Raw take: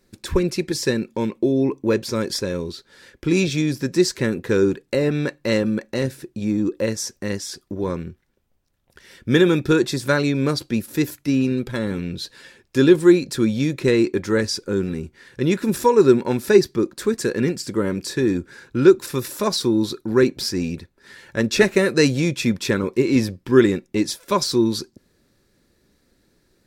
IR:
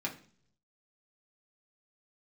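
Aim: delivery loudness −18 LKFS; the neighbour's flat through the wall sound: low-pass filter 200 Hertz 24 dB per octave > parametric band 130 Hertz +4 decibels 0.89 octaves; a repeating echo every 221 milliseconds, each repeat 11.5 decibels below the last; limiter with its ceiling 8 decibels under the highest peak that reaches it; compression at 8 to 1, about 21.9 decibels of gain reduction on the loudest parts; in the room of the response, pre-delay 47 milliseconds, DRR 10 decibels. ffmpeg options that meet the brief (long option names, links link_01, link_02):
-filter_complex "[0:a]acompressor=threshold=-31dB:ratio=8,alimiter=level_in=3dB:limit=-24dB:level=0:latency=1,volume=-3dB,aecho=1:1:221|442|663:0.266|0.0718|0.0194,asplit=2[link_01][link_02];[1:a]atrim=start_sample=2205,adelay=47[link_03];[link_02][link_03]afir=irnorm=-1:irlink=0,volume=-13dB[link_04];[link_01][link_04]amix=inputs=2:normalize=0,lowpass=frequency=200:width=0.5412,lowpass=frequency=200:width=1.3066,equalizer=frequency=130:width_type=o:width=0.89:gain=4,volume=23.5dB"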